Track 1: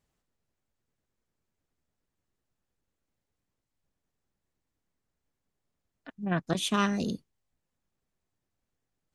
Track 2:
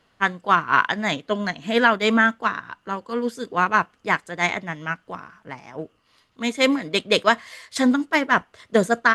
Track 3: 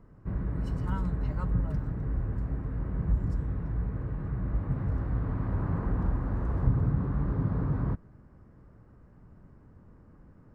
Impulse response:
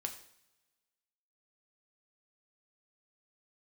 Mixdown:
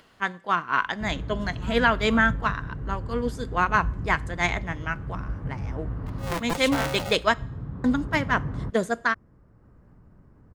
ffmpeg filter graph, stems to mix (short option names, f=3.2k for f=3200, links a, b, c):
-filter_complex "[0:a]adynamicequalizer=threshold=0.00708:dfrequency=610:dqfactor=0.83:tfrequency=610:tqfactor=0.83:attack=5:release=100:ratio=0.375:range=4:mode=boostabove:tftype=bell,aeval=exprs='val(0)*sgn(sin(2*PI*340*n/s))':c=same,volume=-6dB,asplit=3[a][b][c];[b]volume=-10dB[d];[1:a]dynaudnorm=f=240:g=11:m=11.5dB,volume=-8dB,asplit=3[e][f][g];[e]atrim=end=7.34,asetpts=PTS-STARTPTS,afade=t=out:st=7.336:d=0.004:c=hsin[h];[f]atrim=start=7.34:end=7.84,asetpts=PTS-STARTPTS,volume=0[i];[g]atrim=start=7.84,asetpts=PTS-STARTPTS,afade=t=in:d=0.004:c=hsin[j];[h][i][j]concat=n=3:v=0:a=1,asplit=2[k][l];[l]volume=-11.5dB[m];[2:a]adelay=750,volume=-2dB[n];[c]apad=whole_len=497935[o];[n][o]sidechaincompress=threshold=-35dB:ratio=8:attack=16:release=1480[p];[3:a]atrim=start_sample=2205[q];[d][m]amix=inputs=2:normalize=0[r];[r][q]afir=irnorm=-1:irlink=0[s];[a][k][p][s]amix=inputs=4:normalize=0,acompressor=mode=upward:threshold=-47dB:ratio=2.5"